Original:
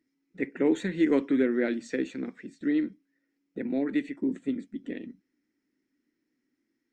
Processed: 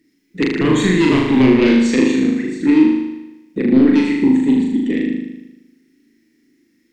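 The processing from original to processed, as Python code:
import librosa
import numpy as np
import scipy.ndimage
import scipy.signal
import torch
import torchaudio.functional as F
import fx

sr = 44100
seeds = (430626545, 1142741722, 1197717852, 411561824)

y = fx.fold_sine(x, sr, drive_db=9, ceiling_db=-13.0)
y = fx.band_shelf(y, sr, hz=900.0, db=-10.0, octaves=1.7)
y = fx.room_flutter(y, sr, wall_m=6.6, rt60_s=1.0)
y = y * librosa.db_to_amplitude(3.0)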